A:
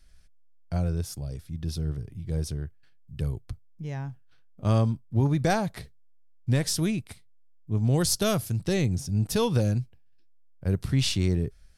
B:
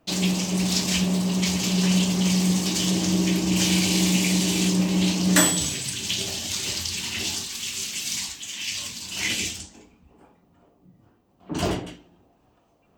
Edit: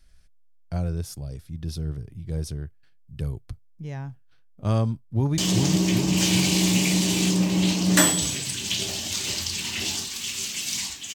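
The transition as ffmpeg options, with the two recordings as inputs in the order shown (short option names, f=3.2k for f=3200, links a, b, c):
-filter_complex "[0:a]apad=whole_dur=11.14,atrim=end=11.14,atrim=end=5.382[a];[1:a]atrim=start=2.768:end=8.53[b];[a][b]acrossfade=d=0.004:c1=hsin:c2=hsin,asplit=2[c][d];[d]afade=t=in:st=5.08:d=0.01,afade=t=out:st=5.38:d=0.01,aecho=0:1:390|780|1170|1560|1950|2340|2730|3120|3510|3900|4290:0.794328|0.516313|0.335604|0.218142|0.141793|0.0921652|0.0599074|0.0389398|0.0253109|0.0164521|0.0106938[e];[c][e]amix=inputs=2:normalize=0"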